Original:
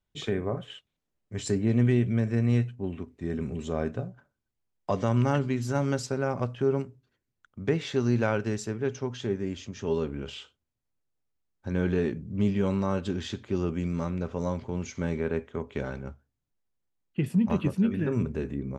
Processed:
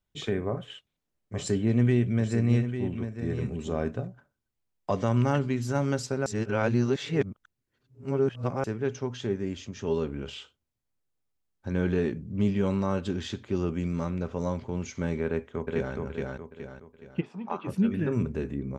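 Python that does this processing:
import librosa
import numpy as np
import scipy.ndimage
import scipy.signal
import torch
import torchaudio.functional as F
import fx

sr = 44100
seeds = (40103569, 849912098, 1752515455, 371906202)

y = fx.echo_single(x, sr, ms=848, db=-9.0, at=(0.49, 4.07))
y = fx.echo_throw(y, sr, start_s=15.25, length_s=0.7, ms=420, feedback_pct=40, wet_db=-2.0)
y = fx.cabinet(y, sr, low_hz=490.0, low_slope=12, high_hz=4900.0, hz=(530.0, 810.0, 1200.0, 1900.0, 2900.0, 4300.0), db=(-5, 7, 5, -9, -9, -9), at=(17.2, 17.67), fade=0.02)
y = fx.edit(y, sr, fx.reverse_span(start_s=6.26, length_s=2.38), tone=tone)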